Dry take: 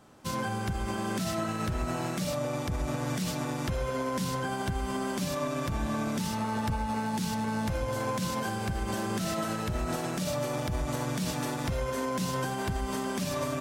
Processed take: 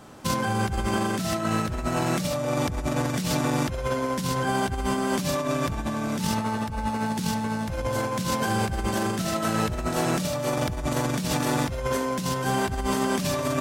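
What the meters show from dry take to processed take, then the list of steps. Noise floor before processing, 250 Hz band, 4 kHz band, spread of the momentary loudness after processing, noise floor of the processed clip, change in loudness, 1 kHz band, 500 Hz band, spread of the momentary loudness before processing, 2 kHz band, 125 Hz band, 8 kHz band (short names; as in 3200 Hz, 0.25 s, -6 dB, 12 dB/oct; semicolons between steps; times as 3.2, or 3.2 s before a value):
-34 dBFS, +5.5 dB, +5.5 dB, 3 LU, -31 dBFS, +5.5 dB, +6.0 dB, +5.5 dB, 1 LU, +6.0 dB, +4.5 dB, +5.5 dB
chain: negative-ratio compressor -33 dBFS, ratio -0.5; gain +7.5 dB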